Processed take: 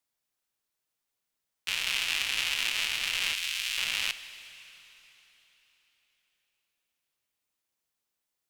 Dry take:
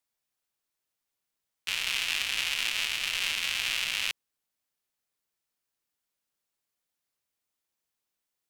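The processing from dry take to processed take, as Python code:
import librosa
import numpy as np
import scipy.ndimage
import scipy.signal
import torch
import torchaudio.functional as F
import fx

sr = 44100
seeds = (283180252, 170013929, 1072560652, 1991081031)

y = fx.tone_stack(x, sr, knobs='10-0-10', at=(3.34, 3.78))
y = fx.rev_plate(y, sr, seeds[0], rt60_s=3.9, hf_ratio=0.95, predelay_ms=0, drr_db=12.0)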